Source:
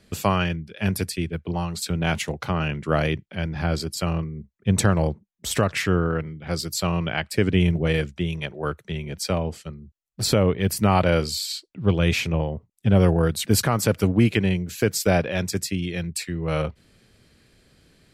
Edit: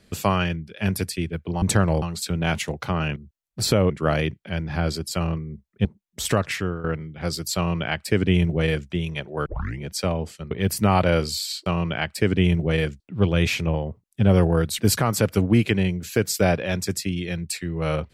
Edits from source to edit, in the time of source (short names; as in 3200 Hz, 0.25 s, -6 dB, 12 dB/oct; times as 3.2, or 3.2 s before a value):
4.71–5.11 move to 1.62
5.65–6.1 fade out linear, to -12.5 dB
6.82–8.16 copy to 11.66
8.72 tape start 0.34 s
9.77–10.51 move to 2.76